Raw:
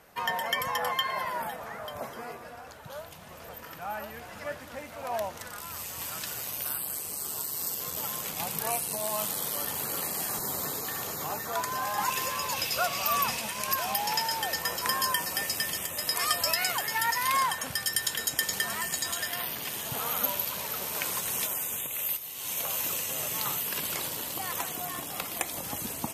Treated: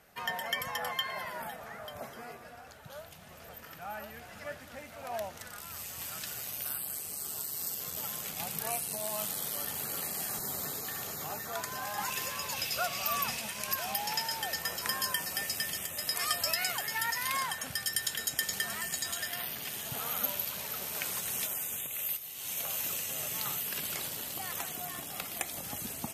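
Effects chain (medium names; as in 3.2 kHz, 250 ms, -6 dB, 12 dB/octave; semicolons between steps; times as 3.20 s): graphic EQ with 31 bands 315 Hz -4 dB, 500 Hz -4 dB, 1 kHz -7 dB; trim -3.5 dB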